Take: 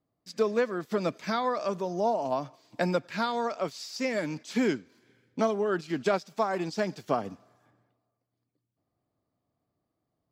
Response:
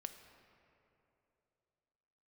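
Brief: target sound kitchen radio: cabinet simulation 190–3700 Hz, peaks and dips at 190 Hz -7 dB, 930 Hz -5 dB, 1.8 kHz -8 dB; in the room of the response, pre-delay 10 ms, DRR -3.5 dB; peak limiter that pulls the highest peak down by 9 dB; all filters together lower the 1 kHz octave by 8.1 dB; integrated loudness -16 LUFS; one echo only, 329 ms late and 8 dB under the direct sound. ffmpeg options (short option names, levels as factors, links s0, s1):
-filter_complex "[0:a]equalizer=f=1000:t=o:g=-9,alimiter=limit=0.0668:level=0:latency=1,aecho=1:1:329:0.398,asplit=2[s0][s1];[1:a]atrim=start_sample=2205,adelay=10[s2];[s1][s2]afir=irnorm=-1:irlink=0,volume=2.37[s3];[s0][s3]amix=inputs=2:normalize=0,highpass=190,equalizer=f=190:t=q:w=4:g=-7,equalizer=f=930:t=q:w=4:g=-5,equalizer=f=1800:t=q:w=4:g=-8,lowpass=f=3700:w=0.5412,lowpass=f=3700:w=1.3066,volume=5.62"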